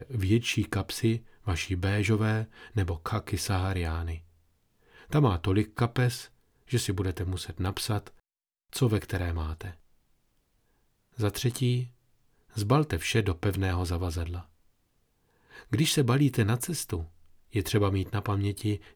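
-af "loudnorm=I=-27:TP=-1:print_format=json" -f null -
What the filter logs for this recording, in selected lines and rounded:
"input_i" : "-29.0",
"input_tp" : "-11.5",
"input_lra" : "3.6",
"input_thresh" : "-39.6",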